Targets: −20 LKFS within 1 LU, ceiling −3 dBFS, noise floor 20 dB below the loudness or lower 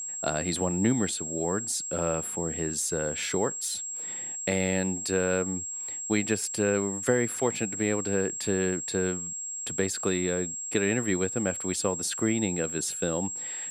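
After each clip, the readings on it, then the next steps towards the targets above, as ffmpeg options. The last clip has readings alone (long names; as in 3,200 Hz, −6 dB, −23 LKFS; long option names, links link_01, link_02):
interfering tone 7,600 Hz; level of the tone −33 dBFS; integrated loudness −28.0 LKFS; sample peak −10.5 dBFS; target loudness −20.0 LKFS
→ -af "bandreject=frequency=7600:width=30"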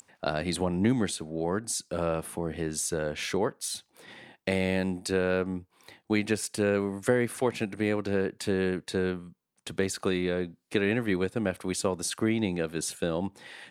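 interfering tone none found; integrated loudness −29.5 LKFS; sample peak −11.0 dBFS; target loudness −20.0 LKFS
→ -af "volume=9.5dB,alimiter=limit=-3dB:level=0:latency=1"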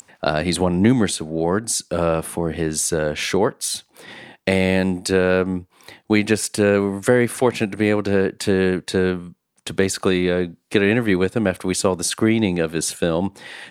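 integrated loudness −20.0 LKFS; sample peak −3.0 dBFS; background noise floor −63 dBFS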